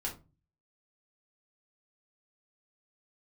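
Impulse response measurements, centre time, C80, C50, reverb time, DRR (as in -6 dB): 17 ms, 18.5 dB, 11.0 dB, 0.30 s, -2.5 dB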